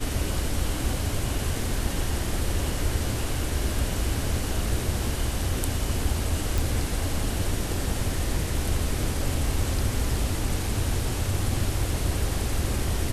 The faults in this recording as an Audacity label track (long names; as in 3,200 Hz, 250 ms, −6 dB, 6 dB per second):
6.580000	6.580000	click